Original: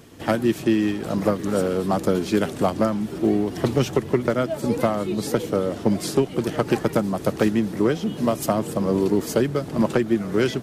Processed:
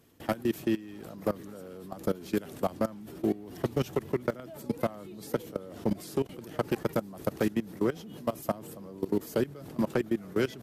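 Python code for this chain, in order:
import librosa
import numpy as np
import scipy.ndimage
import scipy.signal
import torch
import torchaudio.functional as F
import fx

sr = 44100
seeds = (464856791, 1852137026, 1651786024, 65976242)

y = fx.peak_eq(x, sr, hz=13000.0, db=11.0, octaves=0.39)
y = fx.level_steps(y, sr, step_db=19)
y = y * librosa.db_to_amplitude(-6.0)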